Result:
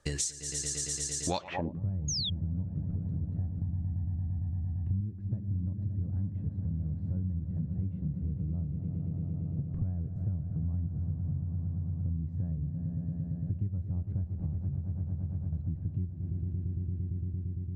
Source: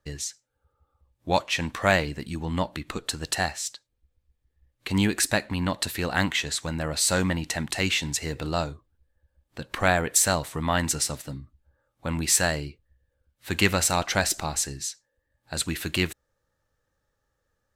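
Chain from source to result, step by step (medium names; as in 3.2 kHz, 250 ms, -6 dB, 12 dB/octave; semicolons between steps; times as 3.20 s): echo with a slow build-up 114 ms, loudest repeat 5, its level -13 dB; low-pass sweep 8.6 kHz -> 120 Hz, 1.30–1.81 s; 2.08–2.30 s: painted sound fall 3.2–6.8 kHz -27 dBFS; 3.61–5.01 s: comb 1.1 ms, depth 97%; compression 8:1, threshold -38 dBFS, peak gain reduction 22 dB; trim +8 dB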